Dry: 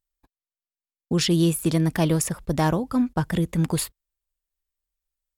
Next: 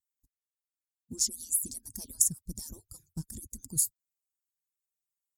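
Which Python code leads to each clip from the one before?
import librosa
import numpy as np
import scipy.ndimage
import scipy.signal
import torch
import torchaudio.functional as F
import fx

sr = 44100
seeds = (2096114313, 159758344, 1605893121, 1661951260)

y = fx.hpss_only(x, sr, part='percussive')
y = fx.curve_eq(y, sr, hz=(110.0, 250.0, 590.0, 920.0, 1300.0, 3000.0, 4700.0, 6800.0, 12000.0), db=(0, -6, -28, -26, -29, -27, -3, 12, 10))
y = y * 10.0 ** (-7.5 / 20.0)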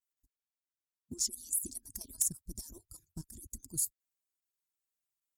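y = x + 0.39 * np.pad(x, (int(3.0 * sr / 1000.0), 0))[:len(x)]
y = fx.level_steps(y, sr, step_db=10)
y = np.clip(y, -10.0 ** (-21.0 / 20.0), 10.0 ** (-21.0 / 20.0))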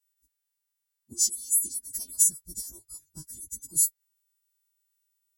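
y = fx.freq_snap(x, sr, grid_st=2)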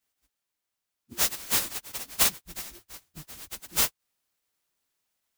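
y = fx.clock_jitter(x, sr, seeds[0], jitter_ms=0.038)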